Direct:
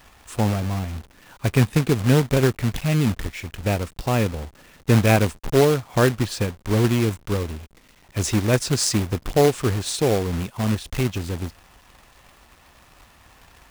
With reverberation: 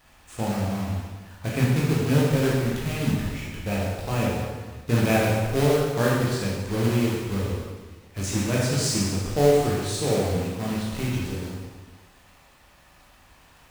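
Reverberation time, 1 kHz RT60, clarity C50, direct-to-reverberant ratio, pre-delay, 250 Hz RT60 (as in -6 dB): 1.4 s, 1.4 s, -1.0 dB, -6.0 dB, 7 ms, 1.5 s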